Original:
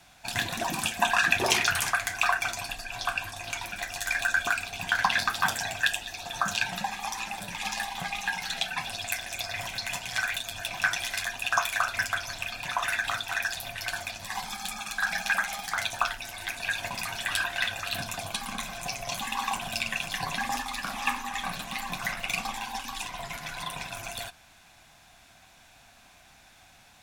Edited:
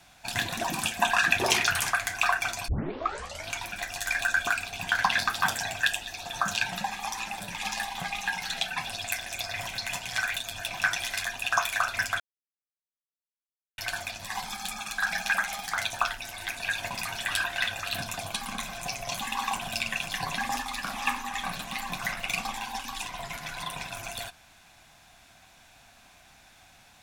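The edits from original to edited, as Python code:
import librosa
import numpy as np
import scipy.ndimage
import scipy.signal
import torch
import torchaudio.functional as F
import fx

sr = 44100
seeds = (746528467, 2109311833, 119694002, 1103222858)

y = fx.edit(x, sr, fx.tape_start(start_s=2.68, length_s=0.82),
    fx.silence(start_s=12.2, length_s=1.58), tone=tone)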